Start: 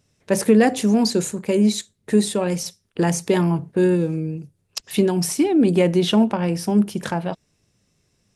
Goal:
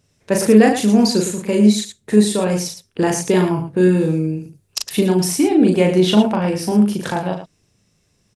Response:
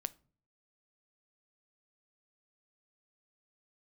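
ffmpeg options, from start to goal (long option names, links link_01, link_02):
-filter_complex "[0:a]asettb=1/sr,asplit=3[link_01][link_02][link_03];[link_01]atrim=end=3.974[link_04];[link_02]atrim=start=3.97:end=4.9,asetpts=PTS-STARTPTS,afade=type=in:duration=0.004:curve=qsin,afade=type=out:start_time=0.926:duration=0.004:curve=qsin,highshelf=frequency=4600:gain=6[link_05];[link_03]atrim=start=4.896[link_06];[link_04][link_05]acrossfade=duration=0.004:curve1=hsin:curve2=qsin[link_07];[link_07][link_06]acrossfade=duration=0.004:curve1=qsin:curve2=hsin,aecho=1:1:37.9|110.8:0.708|0.355,volume=1.5dB"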